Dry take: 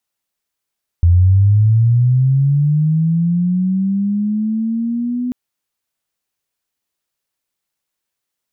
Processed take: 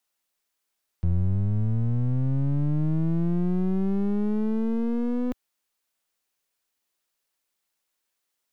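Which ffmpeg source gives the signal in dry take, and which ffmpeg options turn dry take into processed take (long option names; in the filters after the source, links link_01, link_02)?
-f lavfi -i "aevalsrc='pow(10,(-6.5-10.5*t/4.29)/20)*sin(2*PI*(84*t+166*t*t/(2*4.29)))':duration=4.29:sample_rate=44100"
-af "equalizer=frequency=100:width=0.76:gain=-9.5,aeval=exprs='clip(val(0),-1,0.0178)':channel_layout=same"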